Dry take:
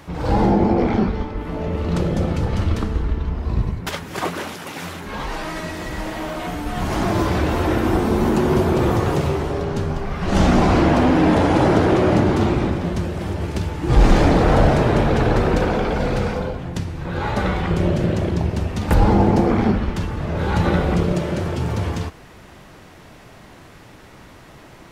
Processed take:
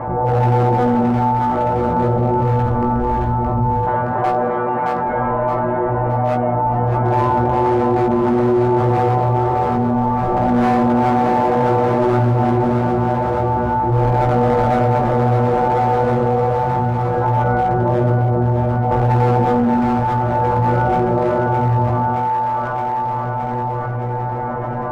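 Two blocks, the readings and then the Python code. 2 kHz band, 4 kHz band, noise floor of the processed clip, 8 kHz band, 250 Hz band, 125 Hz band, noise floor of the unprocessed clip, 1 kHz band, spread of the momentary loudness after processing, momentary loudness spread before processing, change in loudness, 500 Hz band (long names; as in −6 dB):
−0.5 dB, −9.5 dB, −22 dBFS, below −10 dB, +0.5 dB, +3.0 dB, −44 dBFS, +9.0 dB, 4 LU, 12 LU, +3.0 dB, +4.0 dB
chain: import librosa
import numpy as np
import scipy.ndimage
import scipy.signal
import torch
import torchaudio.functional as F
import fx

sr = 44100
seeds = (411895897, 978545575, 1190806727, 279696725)

p1 = scipy.signal.sosfilt(scipy.signal.butter(4, 1300.0, 'lowpass', fs=sr, output='sos'), x)
p2 = fx.band_shelf(p1, sr, hz=670.0, db=8.0, octaves=1.0)
p3 = fx.hum_notches(p2, sr, base_hz=50, count=5)
p4 = fx.rider(p3, sr, range_db=4, speed_s=2.0)
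p5 = p3 + F.gain(torch.from_numpy(p4), 1.0).numpy()
p6 = fx.stiff_resonator(p5, sr, f0_hz=120.0, decay_s=0.48, stiffness=0.002)
p7 = fx.clip_asym(p6, sr, top_db=-18.0, bottom_db=-10.0)
p8 = fx.doubler(p7, sr, ms=17.0, db=-5)
p9 = p8 + fx.echo_split(p8, sr, split_hz=700.0, low_ms=92, high_ms=619, feedback_pct=52, wet_db=-7.0, dry=0)
p10 = fx.env_flatten(p9, sr, amount_pct=70)
y = F.gain(torch.from_numpy(p10), -1.0).numpy()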